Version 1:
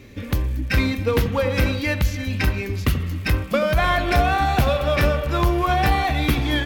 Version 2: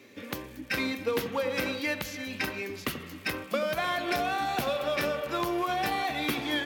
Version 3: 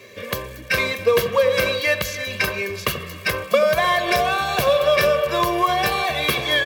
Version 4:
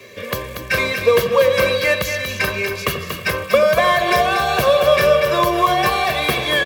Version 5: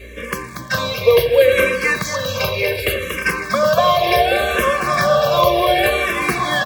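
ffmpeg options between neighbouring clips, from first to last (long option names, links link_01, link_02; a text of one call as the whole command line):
ffmpeg -i in.wav -filter_complex "[0:a]highpass=290,acrossover=split=380|3000[link_01][link_02][link_03];[link_02]acompressor=threshold=-23dB:ratio=6[link_04];[link_01][link_04][link_03]amix=inputs=3:normalize=0,volume=-5dB" out.wav
ffmpeg -i in.wav -af "aecho=1:1:1.8:0.9,volume=8dB" out.wav
ffmpeg -i in.wav -filter_complex "[0:a]aecho=1:1:237:0.398,acrossover=split=240|2000[link_01][link_02][link_03];[link_03]asoftclip=type=tanh:threshold=-22.5dB[link_04];[link_01][link_02][link_04]amix=inputs=3:normalize=0,volume=3dB" out.wav
ffmpeg -i in.wav -filter_complex "[0:a]aeval=exprs='val(0)+0.0112*(sin(2*PI*60*n/s)+sin(2*PI*2*60*n/s)/2+sin(2*PI*3*60*n/s)/3+sin(2*PI*4*60*n/s)/4+sin(2*PI*5*60*n/s)/5)':channel_layout=same,aecho=1:1:777|1554|2331|3108:0.355|0.142|0.0568|0.0227,asplit=2[link_01][link_02];[link_02]afreqshift=-0.68[link_03];[link_01][link_03]amix=inputs=2:normalize=1,volume=3dB" out.wav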